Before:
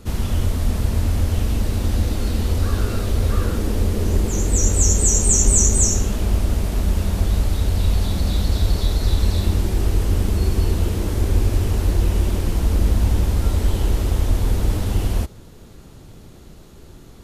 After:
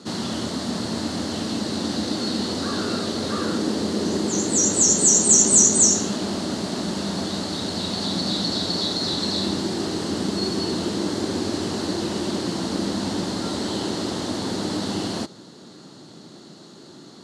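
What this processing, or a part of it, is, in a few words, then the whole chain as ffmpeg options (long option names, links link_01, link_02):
television speaker: -af "highpass=frequency=170:width=0.5412,highpass=frequency=170:width=1.3066,equalizer=frequency=310:width_type=q:width=4:gain=3,equalizer=frequency=470:width_type=q:width=4:gain=-4,equalizer=frequency=2400:width_type=q:width=4:gain=-8,equalizer=frequency=4300:width_type=q:width=4:gain=10,lowpass=frequency=8400:width=0.5412,lowpass=frequency=8400:width=1.3066,volume=3dB"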